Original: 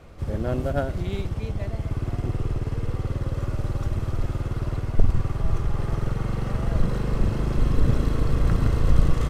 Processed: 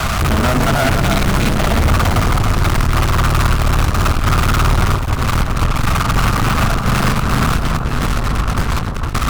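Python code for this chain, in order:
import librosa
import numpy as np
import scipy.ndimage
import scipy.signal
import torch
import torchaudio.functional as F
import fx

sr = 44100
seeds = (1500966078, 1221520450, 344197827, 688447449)

y = scipy.signal.sosfilt(scipy.signal.ellip(3, 1.0, 40, [250.0, 640.0], 'bandstop', fs=sr, output='sos'), x)
y = fx.peak_eq(y, sr, hz=1300.0, db=10.5, octaves=0.73)
y = fx.hum_notches(y, sr, base_hz=50, count=2)
y = fx.over_compress(y, sr, threshold_db=-29.0, ratio=-0.5)
y = fx.fuzz(y, sr, gain_db=53.0, gate_db=-44.0)
y = fx.echo_alternate(y, sr, ms=297, hz=1400.0, feedback_pct=53, wet_db=-4.5)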